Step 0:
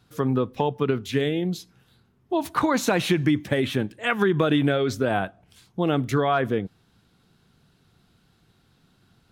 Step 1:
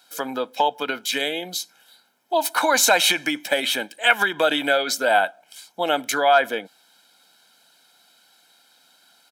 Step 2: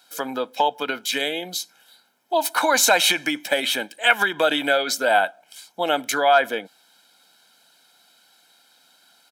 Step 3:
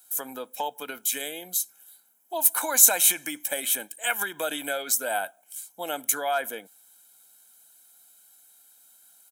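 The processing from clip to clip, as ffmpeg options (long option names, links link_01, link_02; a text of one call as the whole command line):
ffmpeg -i in.wav -af "highpass=frequency=340:width=0.5412,highpass=frequency=340:width=1.3066,highshelf=frequency=3100:gain=10.5,aecho=1:1:1.3:0.76,volume=3dB" out.wav
ffmpeg -i in.wav -af anull out.wav
ffmpeg -i in.wav -af "aexciter=amount=9.5:drive=3.5:freq=6700,volume=-10.5dB" out.wav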